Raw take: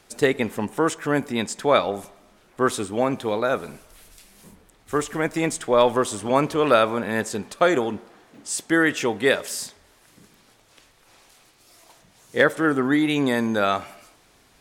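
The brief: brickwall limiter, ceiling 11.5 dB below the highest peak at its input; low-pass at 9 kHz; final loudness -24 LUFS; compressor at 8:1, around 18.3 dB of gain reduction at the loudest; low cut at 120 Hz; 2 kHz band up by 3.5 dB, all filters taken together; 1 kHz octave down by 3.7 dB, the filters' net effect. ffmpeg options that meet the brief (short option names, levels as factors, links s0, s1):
-af "highpass=120,lowpass=9000,equalizer=f=1000:t=o:g=-8,equalizer=f=2000:t=o:g=7,acompressor=threshold=0.0251:ratio=8,volume=5.31,alimiter=limit=0.251:level=0:latency=1"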